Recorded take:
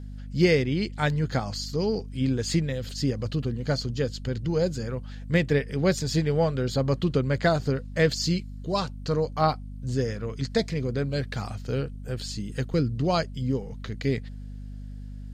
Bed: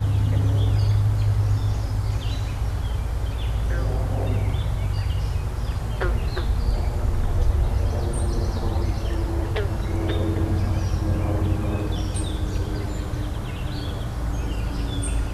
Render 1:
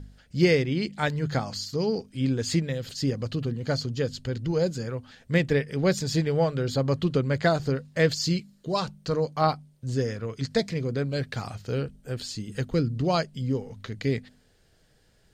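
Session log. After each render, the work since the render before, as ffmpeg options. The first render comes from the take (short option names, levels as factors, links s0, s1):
-af "bandreject=f=50:t=h:w=4,bandreject=f=100:t=h:w=4,bandreject=f=150:t=h:w=4,bandreject=f=200:t=h:w=4,bandreject=f=250:t=h:w=4"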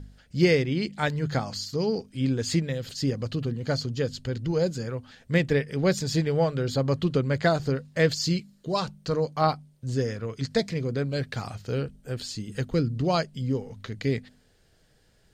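-af anull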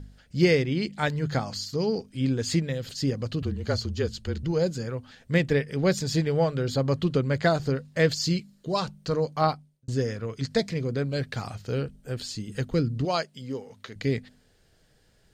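-filter_complex "[0:a]asettb=1/sr,asplit=3[s0][s1][s2];[s0]atrim=end=3.424[s3];[s1]atrim=start=3.42:end=4.43,asetpts=PTS-STARTPTS,afade=t=in:d=0.004:c=qsin,afade=t=out:st=1.006:d=0.004:c=qsin,afreqshift=-33[s4];[s2]atrim=start=4.426[s5];[s3][s4]acrossfade=d=0.004:c1=hsin:c2=qsin[s6];[s6][s5]acrossfade=d=0.004:c1=qsin:c2=hsin,asettb=1/sr,asplit=3[s7][s8][s9];[s7]atrim=end=13.054[s10];[s8]atrim=start=13.05:end=13.96,asetpts=PTS-STARTPTS,afade=t=in:d=0.004:c=qsin,afade=t=out:st=0.906:d=0.004:c=qsin,highpass=f=460:p=1[s11];[s9]atrim=start=13.956[s12];[s10][s11]acrossfade=d=0.004:c1=hsin:c2=qsin[s13];[s13][s12]acrossfade=d=0.004:c1=qsin:c2=hsin,asplit=2[s14][s15];[s14]atrim=end=9.88,asetpts=PTS-STARTPTS,afade=t=out:st=9.43:d=0.45[s16];[s15]atrim=start=9.88,asetpts=PTS-STARTPTS,afade=t=in:d=0.004:c=hsin[s17];[s16][s17]concat=n=2:v=0:a=1"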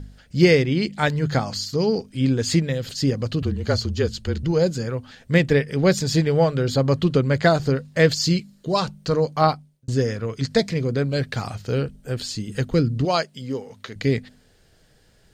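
-af "volume=1.88"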